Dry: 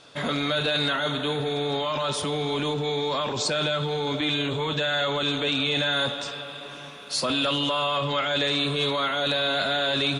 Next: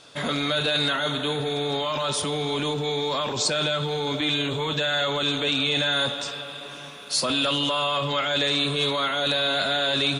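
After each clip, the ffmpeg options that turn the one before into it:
ffmpeg -i in.wav -af "highshelf=frequency=5600:gain=7" out.wav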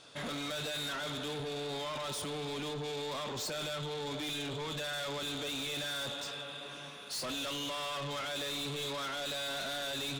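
ffmpeg -i in.wav -af "asoftclip=type=tanh:threshold=-29.5dB,volume=-6dB" out.wav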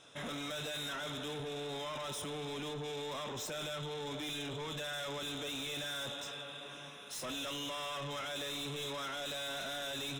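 ffmpeg -i in.wav -af "asuperstop=centerf=4500:order=4:qfactor=4.8,volume=-2.5dB" out.wav

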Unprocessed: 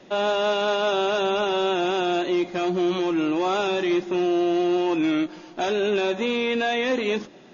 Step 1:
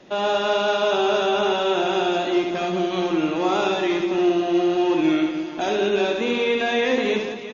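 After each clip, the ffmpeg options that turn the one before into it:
ffmpeg -i in.wav -af "aecho=1:1:70|182|361.2|647.9|1107:0.631|0.398|0.251|0.158|0.1" out.wav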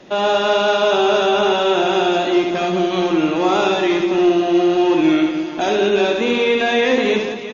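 ffmpeg -i in.wav -af "acontrast=30" out.wav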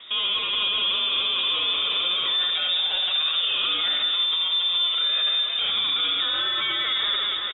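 ffmpeg -i in.wav -filter_complex "[0:a]alimiter=limit=-17.5dB:level=0:latency=1:release=14,asplit=2[link_01][link_02];[link_02]adelay=190,highpass=300,lowpass=3400,asoftclip=type=hard:threshold=-25.5dB,volume=-8dB[link_03];[link_01][link_03]amix=inputs=2:normalize=0,lowpass=frequency=3300:width_type=q:width=0.5098,lowpass=frequency=3300:width_type=q:width=0.6013,lowpass=frequency=3300:width_type=q:width=0.9,lowpass=frequency=3300:width_type=q:width=2.563,afreqshift=-3900" out.wav

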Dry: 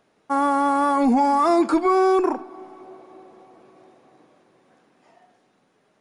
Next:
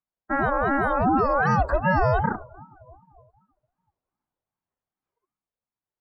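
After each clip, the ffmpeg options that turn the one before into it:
ffmpeg -i in.wav -af "afftdn=noise_reduction=31:noise_floor=-32,aeval=exprs='val(0)*sin(2*PI*400*n/s+400*0.4/2.6*sin(2*PI*2.6*n/s))':channel_layout=same" out.wav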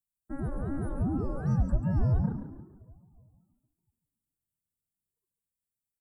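ffmpeg -i in.wav -filter_complex "[0:a]firequalizer=gain_entry='entry(120,0);entry(240,-7);entry(720,-23);entry(2100,-29);entry(4600,-23);entry(7700,6)':delay=0.05:min_phase=1,asplit=5[link_01][link_02][link_03][link_04][link_05];[link_02]adelay=140,afreqshift=58,volume=-10dB[link_06];[link_03]adelay=280,afreqshift=116,volume=-19.9dB[link_07];[link_04]adelay=420,afreqshift=174,volume=-29.8dB[link_08];[link_05]adelay=560,afreqshift=232,volume=-39.7dB[link_09];[link_01][link_06][link_07][link_08][link_09]amix=inputs=5:normalize=0" out.wav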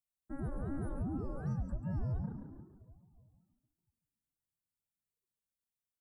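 ffmpeg -i in.wav -af "alimiter=limit=-23.5dB:level=0:latency=1:release=325,volume=-5.5dB" out.wav

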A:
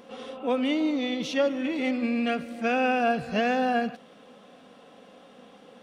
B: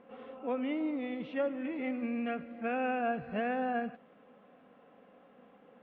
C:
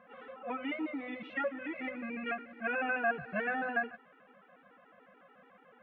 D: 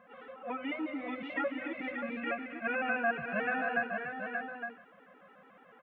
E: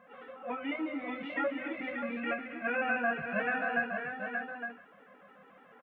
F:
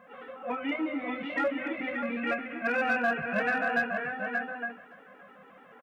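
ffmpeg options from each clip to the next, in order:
ffmpeg -i in.wav -af "lowpass=frequency=2400:width=0.5412,lowpass=frequency=2400:width=1.3066,volume=-8dB" out.wav
ffmpeg -i in.wav -af "equalizer=frequency=1600:width=0.87:gain=13,afftfilt=real='re*gt(sin(2*PI*6.9*pts/sr)*(1-2*mod(floor(b*sr/1024/250),2)),0)':imag='im*gt(sin(2*PI*6.9*pts/sr)*(1-2*mod(floor(b*sr/1024/250),2)),0)':win_size=1024:overlap=0.75,volume=-2dB" out.wav
ffmpeg -i in.wav -af "areverse,acompressor=mode=upward:threshold=-56dB:ratio=2.5,areverse,aecho=1:1:239|582|863:0.2|0.473|0.398" out.wav
ffmpeg -i in.wav -filter_complex "[0:a]asplit=2[link_01][link_02];[link_02]adelay=25,volume=-7dB[link_03];[link_01][link_03]amix=inputs=2:normalize=0" out.wav
ffmpeg -i in.wav -filter_complex "[0:a]asplit=2[link_01][link_02];[link_02]volume=27.5dB,asoftclip=hard,volume=-27.5dB,volume=-4.5dB[link_03];[link_01][link_03]amix=inputs=2:normalize=0,aecho=1:1:565:0.0668" out.wav

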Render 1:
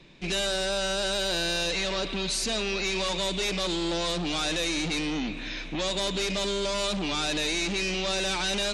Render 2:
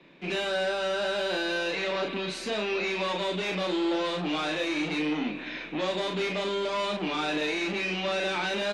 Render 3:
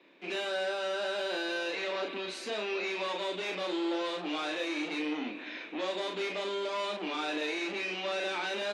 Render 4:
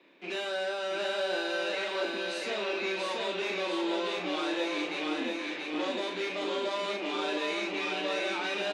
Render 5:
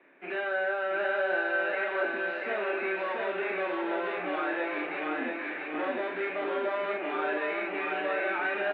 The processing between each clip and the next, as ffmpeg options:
ffmpeg -i in.wav -filter_complex "[0:a]acrossover=split=170 3100:gain=0.0891 1 0.141[link_01][link_02][link_03];[link_01][link_02][link_03]amix=inputs=3:normalize=0,asplit=2[link_04][link_05];[link_05]aecho=0:1:33|44:0.631|0.398[link_06];[link_04][link_06]amix=inputs=2:normalize=0" out.wav
ffmpeg -i in.wav -af "highpass=frequency=250:width=0.5412,highpass=frequency=250:width=1.3066,volume=-4.5dB" out.wav
ffmpeg -i in.wav -af "aecho=1:1:683|1366|2049|2732|3415|4098:0.708|0.333|0.156|0.0735|0.0345|0.0162" out.wav
ffmpeg -i in.wav -af "highpass=190,equalizer=frequency=200:width_type=q:width=4:gain=-9,equalizer=frequency=320:width_type=q:width=4:gain=-8,equalizer=frequency=500:width_type=q:width=4:gain=-7,equalizer=frequency=1000:width_type=q:width=4:gain=-7,equalizer=frequency=1600:width_type=q:width=4:gain=3,lowpass=frequency=2000:width=0.5412,lowpass=frequency=2000:width=1.3066,volume=6dB" out.wav

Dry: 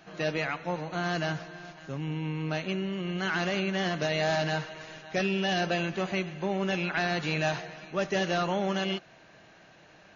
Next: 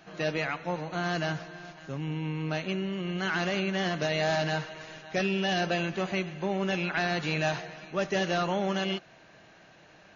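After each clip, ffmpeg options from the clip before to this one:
ffmpeg -i in.wav -af anull out.wav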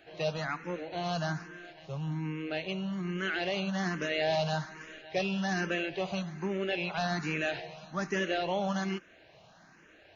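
ffmpeg -i in.wav -filter_complex "[0:a]asplit=2[link_01][link_02];[link_02]afreqshift=1.2[link_03];[link_01][link_03]amix=inputs=2:normalize=1" out.wav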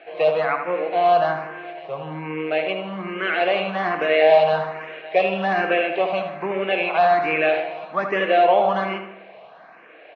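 ffmpeg -i in.wav -filter_complex "[0:a]highpass=300,equalizer=frequency=490:width_type=q:width=4:gain=9,equalizer=frequency=700:width_type=q:width=4:gain=9,equalizer=frequency=1100:width_type=q:width=4:gain=8,equalizer=frequency=2300:width_type=q:width=4:gain=7,lowpass=frequency=3300:width=0.5412,lowpass=frequency=3300:width=1.3066,asplit=2[link_01][link_02];[link_02]adelay=77,lowpass=frequency=2300:poles=1,volume=-6dB,asplit=2[link_03][link_04];[link_04]adelay=77,lowpass=frequency=2300:poles=1,volume=0.53,asplit=2[link_05][link_06];[link_06]adelay=77,lowpass=frequency=2300:poles=1,volume=0.53,asplit=2[link_07][link_08];[link_08]adelay=77,lowpass=frequency=2300:poles=1,volume=0.53,asplit=2[link_09][link_10];[link_10]adelay=77,lowpass=frequency=2300:poles=1,volume=0.53,asplit=2[link_11][link_12];[link_12]adelay=77,lowpass=frequency=2300:poles=1,volume=0.53,asplit=2[link_13][link_14];[link_14]adelay=77,lowpass=frequency=2300:poles=1,volume=0.53[link_15];[link_03][link_05][link_07][link_09][link_11][link_13][link_15]amix=inputs=7:normalize=0[link_16];[link_01][link_16]amix=inputs=2:normalize=0,volume=7dB" out.wav

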